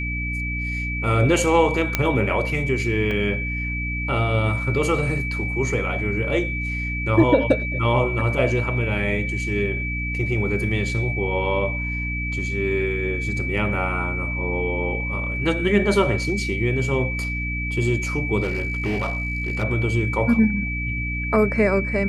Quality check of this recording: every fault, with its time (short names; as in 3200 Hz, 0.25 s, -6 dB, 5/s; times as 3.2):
hum 60 Hz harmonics 5 -28 dBFS
tone 2300 Hz -27 dBFS
1.95 pop -4 dBFS
3.11 gap 2.2 ms
18.42–19.64 clipped -19.5 dBFS